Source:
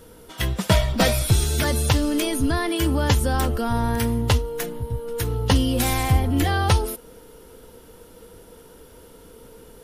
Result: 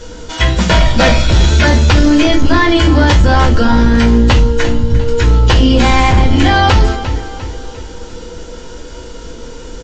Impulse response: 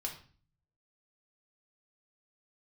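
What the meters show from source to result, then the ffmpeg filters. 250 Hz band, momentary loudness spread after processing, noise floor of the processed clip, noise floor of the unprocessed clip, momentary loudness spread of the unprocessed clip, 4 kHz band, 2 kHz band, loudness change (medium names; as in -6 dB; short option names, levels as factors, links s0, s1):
+12.5 dB, 18 LU, -30 dBFS, -48 dBFS, 9 LU, +11.0 dB, +13.5 dB, +11.0 dB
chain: -filter_complex "[0:a]acrossover=split=3200[s0][s1];[s1]acompressor=threshold=0.00708:ratio=4:attack=1:release=60[s2];[s0][s2]amix=inputs=2:normalize=0,highshelf=f=3600:g=9.5,aecho=1:1:349|698|1047|1396:0.158|0.0729|0.0335|0.0154,aresample=16000,aeval=exprs='0.631*sin(PI/2*2.24*val(0)/0.631)':c=same,aresample=44100[s3];[1:a]atrim=start_sample=2205,asetrate=88200,aresample=44100[s4];[s3][s4]afir=irnorm=-1:irlink=0,apsyclip=4.47,volume=0.668"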